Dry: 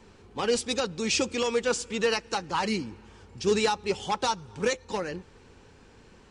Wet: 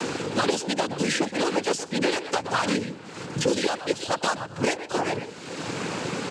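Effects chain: speakerphone echo 0.12 s, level -11 dB; noise vocoder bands 8; three-band squash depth 100%; gain +2 dB

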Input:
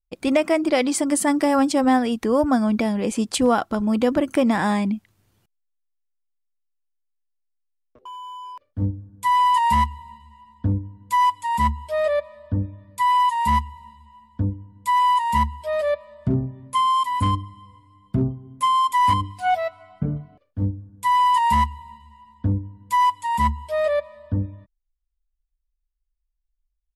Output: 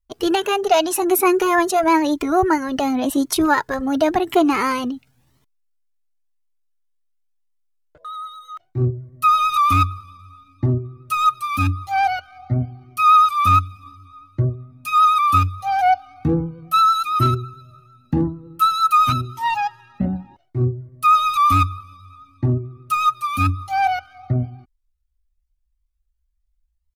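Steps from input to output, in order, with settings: vibrato 9 Hz 27 cents; pitch shift +4 st; cascading flanger rising 0.93 Hz; gain +7.5 dB

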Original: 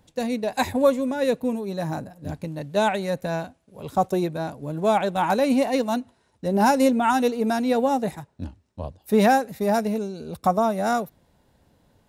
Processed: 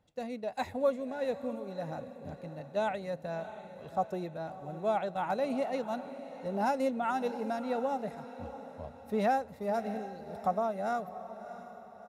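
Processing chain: HPF 1100 Hz 6 dB/oct; tilt -4 dB/oct; comb 1.5 ms, depth 30%; on a send: diffused feedback echo 0.662 s, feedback 45%, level -12.5 dB; on the sum: gain -7.5 dB

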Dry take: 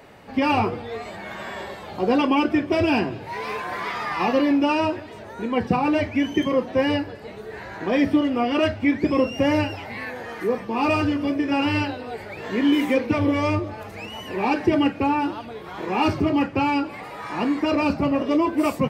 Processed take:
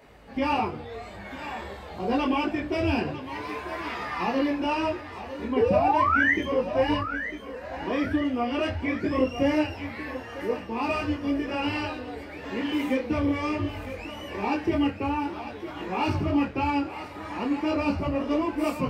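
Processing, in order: 5.56–6.34 painted sound rise 400–2100 Hz -16 dBFS; 7.01–7.65 fixed phaser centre 570 Hz, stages 8; thinning echo 0.951 s, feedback 47%, high-pass 320 Hz, level -10.5 dB; on a send at -18 dB: reverb, pre-delay 46 ms; on the sum: detuned doubles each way 15 cents; gain -2 dB

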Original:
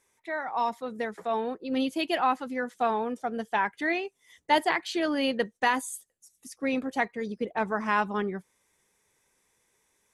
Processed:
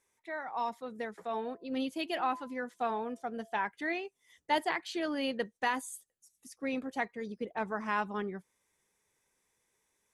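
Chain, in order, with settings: 1.23–3.69 de-hum 338.2 Hz, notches 3; gain -6.5 dB

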